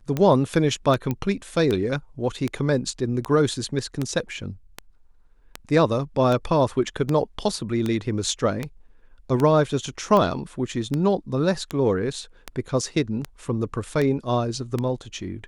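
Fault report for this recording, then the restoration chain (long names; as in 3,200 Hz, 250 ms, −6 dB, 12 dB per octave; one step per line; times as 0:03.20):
scratch tick 78 rpm −12 dBFS
0:01.11: click −13 dBFS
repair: click removal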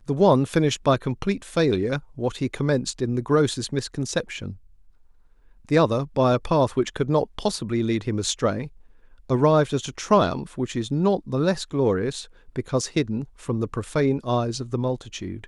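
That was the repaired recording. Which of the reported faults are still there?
none of them is left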